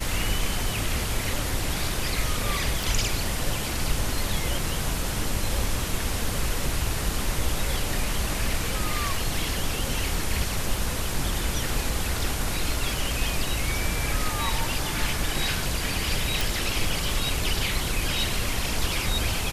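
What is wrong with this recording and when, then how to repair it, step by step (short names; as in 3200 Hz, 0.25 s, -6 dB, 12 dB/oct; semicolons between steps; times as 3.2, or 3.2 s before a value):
2.83 pop
16.41 pop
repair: de-click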